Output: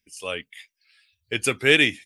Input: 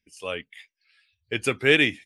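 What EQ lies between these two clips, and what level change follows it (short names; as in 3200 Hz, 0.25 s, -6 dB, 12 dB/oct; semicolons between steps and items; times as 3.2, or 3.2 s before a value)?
high shelf 4300 Hz +9.5 dB; 0.0 dB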